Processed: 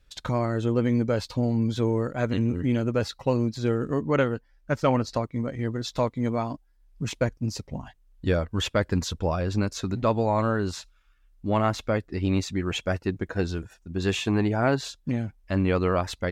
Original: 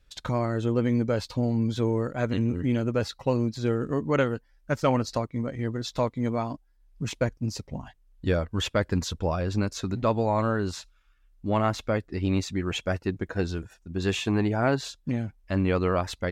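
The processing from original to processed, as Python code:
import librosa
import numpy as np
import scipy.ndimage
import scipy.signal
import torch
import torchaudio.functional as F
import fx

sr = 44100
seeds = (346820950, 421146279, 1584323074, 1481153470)

y = fx.high_shelf(x, sr, hz=6000.0, db=-6.5, at=(4.02, 5.24))
y = y * librosa.db_to_amplitude(1.0)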